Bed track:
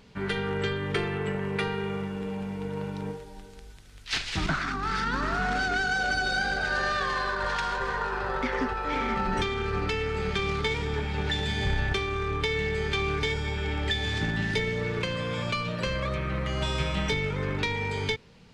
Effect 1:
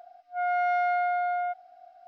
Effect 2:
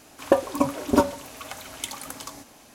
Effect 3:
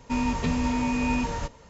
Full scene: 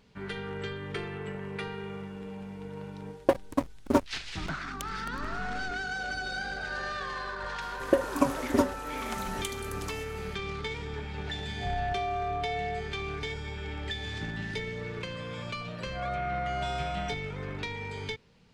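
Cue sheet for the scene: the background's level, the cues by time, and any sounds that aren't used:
bed track -7.5 dB
2.97 s: add 2 -4 dB + hysteresis with a dead band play -16.5 dBFS
7.61 s: add 2 -2 dB + rotary cabinet horn 1.1 Hz
11.27 s: add 1 -6.5 dB + FFT band-reject 1.2–2.8 kHz
15.61 s: add 1 -8 dB
not used: 3

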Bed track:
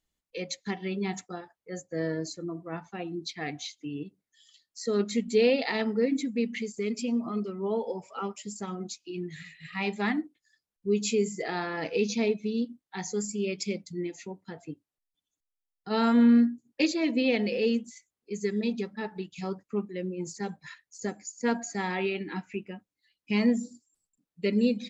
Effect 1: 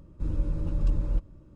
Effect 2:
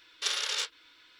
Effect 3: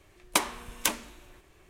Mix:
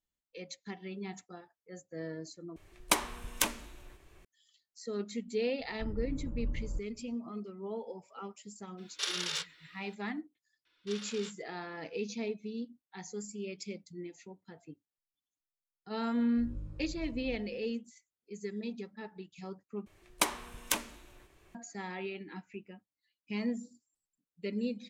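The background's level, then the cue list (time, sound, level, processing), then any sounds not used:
bed track -10 dB
2.56 s: replace with 3 -2.5 dB + bass shelf 78 Hz +6.5 dB
5.60 s: add 1 -10.5 dB + low-pass 1.4 kHz
8.77 s: add 2 -4 dB, fades 0.02 s
10.65 s: add 2 -14 dB + distance through air 55 m
16.17 s: add 1 -6 dB + feedback comb 51 Hz, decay 0.93 s, mix 90%
19.86 s: replace with 3 -4 dB

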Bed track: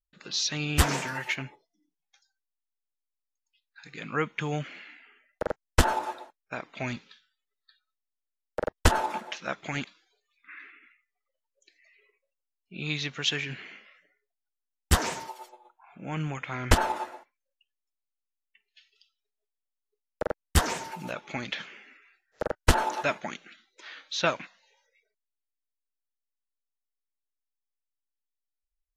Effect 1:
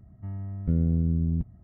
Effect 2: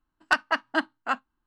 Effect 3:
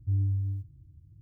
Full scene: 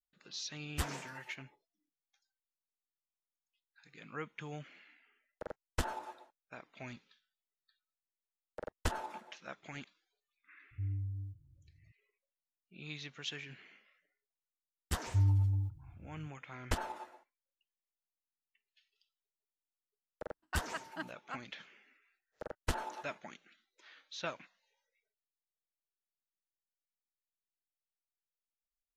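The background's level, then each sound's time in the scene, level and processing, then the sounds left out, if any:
bed track -14 dB
10.71 s: add 3 -10.5 dB
15.07 s: add 3 -1 dB
20.22 s: add 2 -17.5 dB
not used: 1

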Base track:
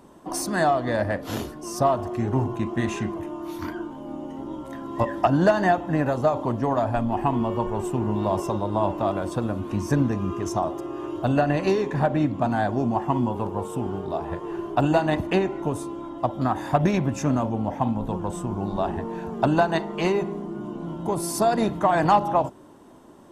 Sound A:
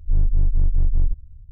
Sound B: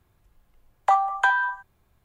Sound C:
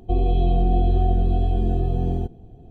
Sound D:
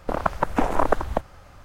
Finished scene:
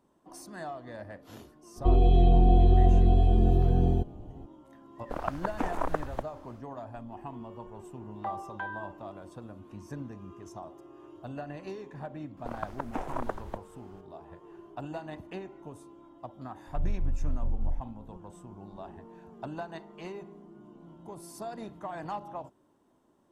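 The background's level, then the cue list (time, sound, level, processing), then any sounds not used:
base track -18.5 dB
1.76 s: add C -1 dB
5.02 s: add D -10 dB, fades 0.10 s
7.36 s: add B -15.5 dB + distance through air 270 m
12.37 s: add D -14 dB
16.67 s: add A -11.5 dB

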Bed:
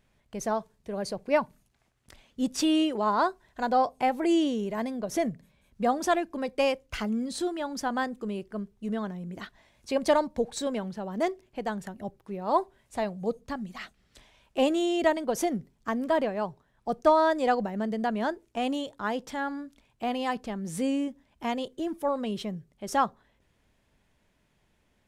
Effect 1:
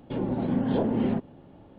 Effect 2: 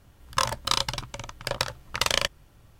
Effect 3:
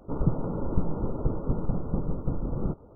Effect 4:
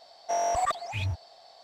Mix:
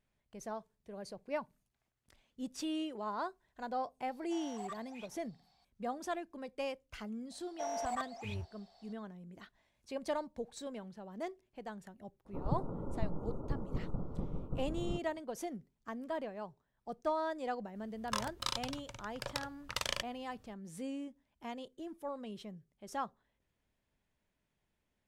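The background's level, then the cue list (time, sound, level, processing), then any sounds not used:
bed -13.5 dB
4.02 s: add 4 -17.5 dB + brick-wall FIR high-pass 690 Hz
7.30 s: add 4 -11.5 dB
12.25 s: add 3 -10.5 dB
17.75 s: add 2 -12.5 dB
not used: 1

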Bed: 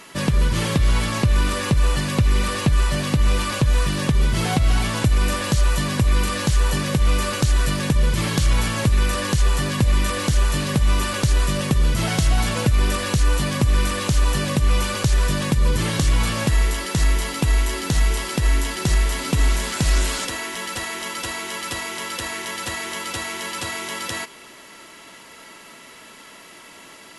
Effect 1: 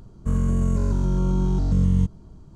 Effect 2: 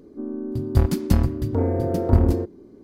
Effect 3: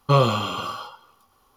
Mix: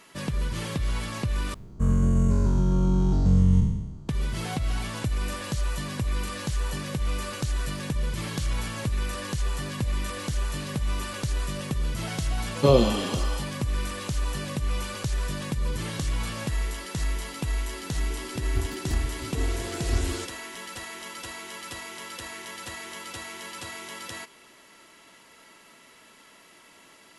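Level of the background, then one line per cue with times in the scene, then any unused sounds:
bed -10 dB
1.54 s: replace with 1 -1.5 dB + spectral sustain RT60 1.01 s
12.54 s: add 3 -9 dB + FFT filter 110 Hz 0 dB, 180 Hz +12 dB, 330 Hz +15 dB, 740 Hz +8 dB, 1.4 kHz -6 dB, 5.2 kHz +12 dB, 12 kHz +2 dB
17.80 s: add 2 -15 dB + comb 2.7 ms, depth 82%

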